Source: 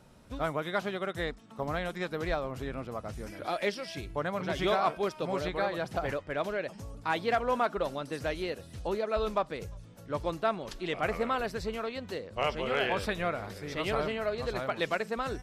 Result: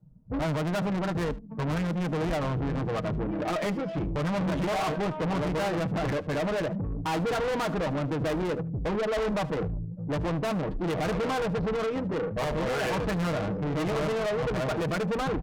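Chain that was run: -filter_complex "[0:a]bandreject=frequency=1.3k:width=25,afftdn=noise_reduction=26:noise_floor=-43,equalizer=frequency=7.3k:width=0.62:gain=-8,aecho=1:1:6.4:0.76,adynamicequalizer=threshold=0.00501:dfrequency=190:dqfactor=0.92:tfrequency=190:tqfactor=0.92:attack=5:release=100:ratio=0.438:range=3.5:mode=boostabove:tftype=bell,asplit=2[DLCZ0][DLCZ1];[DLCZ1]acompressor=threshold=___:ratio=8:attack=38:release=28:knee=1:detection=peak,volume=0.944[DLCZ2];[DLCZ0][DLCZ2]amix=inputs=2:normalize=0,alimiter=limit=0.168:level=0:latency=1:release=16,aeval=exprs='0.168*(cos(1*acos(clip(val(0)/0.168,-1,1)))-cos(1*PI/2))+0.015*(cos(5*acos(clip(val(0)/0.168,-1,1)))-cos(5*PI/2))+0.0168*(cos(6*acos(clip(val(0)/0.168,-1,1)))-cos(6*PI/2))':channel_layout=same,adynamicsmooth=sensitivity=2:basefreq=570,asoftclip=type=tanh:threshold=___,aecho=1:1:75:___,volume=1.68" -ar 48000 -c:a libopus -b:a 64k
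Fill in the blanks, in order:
0.0126, 0.0299, 0.1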